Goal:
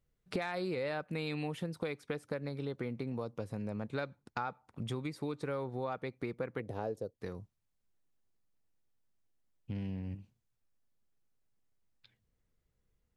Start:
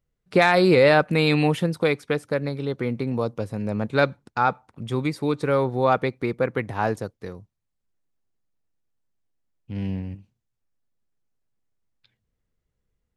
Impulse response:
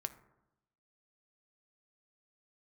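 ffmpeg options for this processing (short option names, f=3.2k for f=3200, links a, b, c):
-filter_complex "[0:a]asettb=1/sr,asplit=3[a][b][c];[a]atrim=end=6.604[d];[b]atrim=start=6.6:end=7.15,asetpts=PTS-STARTPTS,afade=t=in:d=0.004:c=qsin,afade=t=out:st=0.546:d=0.004:c=qsin,equalizer=f=500:t=o:w=1:g=11,equalizer=f=1k:t=o:w=1:g=-8,equalizer=f=2k:t=o:w=1:g=-10,equalizer=f=8k:t=o:w=1:g=-3[e];[c]atrim=start=7.146[f];[d][e]acrossfade=d=0.004:c1=hsin:c2=qsin[g];[g][f]acrossfade=d=0.004:c1=qsin:c2=hsin,acompressor=threshold=-34dB:ratio=6,volume=-1.5dB"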